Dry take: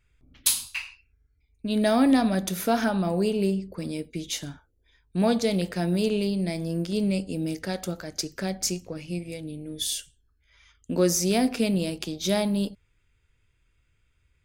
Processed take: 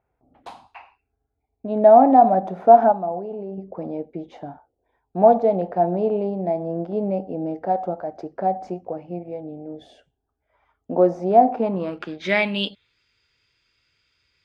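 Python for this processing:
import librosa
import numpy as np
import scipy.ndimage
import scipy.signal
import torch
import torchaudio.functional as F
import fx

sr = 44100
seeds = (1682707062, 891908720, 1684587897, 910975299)

y = fx.highpass(x, sr, hz=390.0, slope=6)
y = fx.level_steps(y, sr, step_db=19, at=(2.92, 3.58))
y = fx.filter_sweep_lowpass(y, sr, from_hz=760.0, to_hz=4800.0, start_s=11.52, end_s=12.98, q=6.0)
y = F.gain(torch.from_numpy(y), 4.5).numpy()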